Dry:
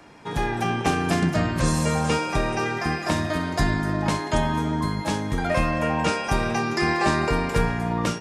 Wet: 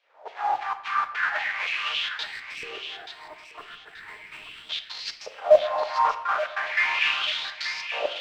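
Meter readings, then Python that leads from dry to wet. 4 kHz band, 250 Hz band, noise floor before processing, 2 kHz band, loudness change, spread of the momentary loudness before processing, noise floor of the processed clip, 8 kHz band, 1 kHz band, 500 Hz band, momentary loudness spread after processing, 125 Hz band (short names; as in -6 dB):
+3.5 dB, under -30 dB, -32 dBFS, +0.5 dB, -2.0 dB, 4 LU, -49 dBFS, -14.0 dB, -2.5 dB, -0.5 dB, 21 LU, under -35 dB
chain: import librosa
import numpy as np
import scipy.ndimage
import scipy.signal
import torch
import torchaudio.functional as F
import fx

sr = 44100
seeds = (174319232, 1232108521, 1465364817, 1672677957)

p1 = fx.halfwave_hold(x, sr)
p2 = fx.filter_lfo_highpass(p1, sr, shape='saw_down', hz=3.6, low_hz=490.0, high_hz=3300.0, q=1.9)
p3 = fx.riaa(p2, sr, side='recording')
p4 = fx.rider(p3, sr, range_db=4, speed_s=2.0)
p5 = p3 + F.gain(torch.from_numpy(p4), 2.5).numpy()
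p6 = fx.step_gate(p5, sr, bpm=144, pattern='xxxxxxx.xx.xx', floor_db=-60.0, edge_ms=4.5)
p7 = fx.filter_lfo_bandpass(p6, sr, shape='saw_up', hz=0.38, low_hz=490.0, high_hz=5700.0, q=5.4)
p8 = fx.mod_noise(p7, sr, seeds[0], snr_db=21)
p9 = fx.spec_box(p8, sr, start_s=2.23, length_s=2.47, low_hz=480.0, high_hz=7400.0, gain_db=-16)
p10 = fx.air_absorb(p9, sr, metres=190.0)
p11 = p10 + fx.echo_thinned(p10, sr, ms=881, feedback_pct=30, hz=1200.0, wet_db=-8.0, dry=0)
p12 = fx.room_shoebox(p11, sr, seeds[1], volume_m3=350.0, walls='mixed', distance_m=0.44)
y = F.gain(torch.from_numpy(p12), -2.5).numpy()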